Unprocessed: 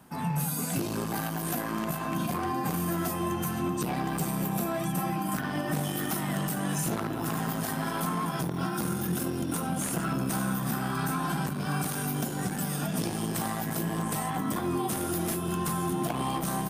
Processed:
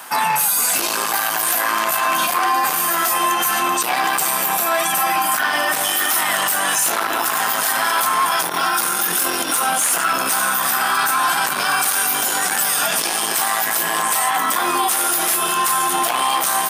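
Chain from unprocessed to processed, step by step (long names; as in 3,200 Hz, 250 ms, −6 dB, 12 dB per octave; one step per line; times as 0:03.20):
high-pass filter 1,000 Hz 12 dB per octave
in parallel at −3 dB: hard clipping −29 dBFS, distortion −19 dB
on the sum: boost into a limiter +29 dB
level −8.5 dB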